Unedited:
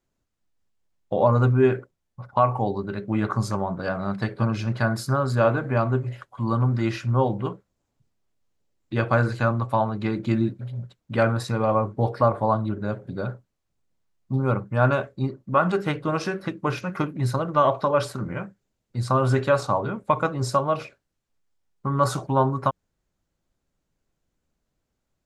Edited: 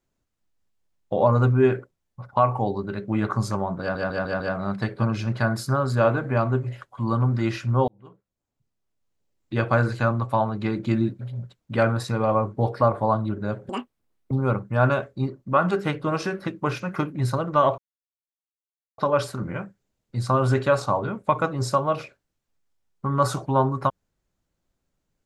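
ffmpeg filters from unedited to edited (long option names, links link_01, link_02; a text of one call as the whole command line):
ffmpeg -i in.wav -filter_complex "[0:a]asplit=9[link_01][link_02][link_03][link_04][link_05][link_06][link_07][link_08][link_09];[link_01]atrim=end=3.952[link_10];[link_02]atrim=start=3.798:end=3.952[link_11];[link_03]atrim=start=3.798:end=3.952[link_12];[link_04]atrim=start=3.798:end=3.952[link_13];[link_05]atrim=start=3.798:end=7.28,asetpts=PTS-STARTPTS,afade=type=out:start_time=3.478:duration=0.004:curve=hsin[link_14];[link_06]atrim=start=7.28:end=13.094,asetpts=PTS-STARTPTS,afade=type=in:duration=1.67[link_15];[link_07]atrim=start=13.09:end=14.32,asetpts=PTS-STARTPTS,asetrate=87318,aresample=44100,atrim=end_sample=27395,asetpts=PTS-STARTPTS[link_16];[link_08]atrim=start=14.316:end=17.79,asetpts=PTS-STARTPTS,afade=type=out:start_time=3.47:duration=0.004:curve=hsin,apad=pad_dur=1.2[link_17];[link_09]atrim=start=17.79,asetpts=PTS-STARTPTS,afade=type=in:duration=0.004:curve=hsin[link_18];[link_10][link_11]acrossfade=duration=0.004:curve1=hsin:curve2=hsin[link_19];[link_19][link_12]acrossfade=duration=0.004:curve1=hsin:curve2=hsin[link_20];[link_20][link_13]acrossfade=duration=0.004:curve1=hsin:curve2=hsin[link_21];[link_14][link_15]concat=n=2:v=0:a=1[link_22];[link_21][link_22]acrossfade=duration=0.004:curve1=hsin:curve2=hsin[link_23];[link_23][link_16]acrossfade=duration=0.004:curve1=hsin:curve2=hsin[link_24];[link_17][link_18]concat=n=2:v=0:a=1[link_25];[link_24][link_25]acrossfade=duration=0.004:curve1=hsin:curve2=hsin" out.wav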